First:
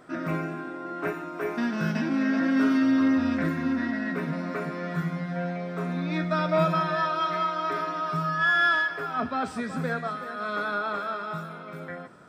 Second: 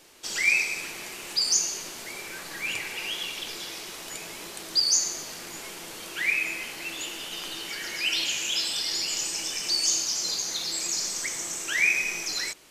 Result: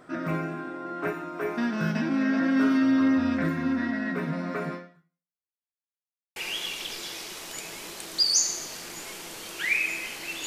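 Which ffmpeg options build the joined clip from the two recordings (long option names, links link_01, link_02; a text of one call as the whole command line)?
ffmpeg -i cue0.wav -i cue1.wav -filter_complex "[0:a]apad=whole_dur=10.46,atrim=end=10.46,asplit=2[link_01][link_02];[link_01]atrim=end=5.47,asetpts=PTS-STARTPTS,afade=type=out:start_time=4.74:duration=0.73:curve=exp[link_03];[link_02]atrim=start=5.47:end=6.36,asetpts=PTS-STARTPTS,volume=0[link_04];[1:a]atrim=start=2.93:end=7.03,asetpts=PTS-STARTPTS,afade=type=in:duration=0.004:curve=hsin[link_05];[link_03][link_04][link_05]concat=n=3:v=0:a=1" out.wav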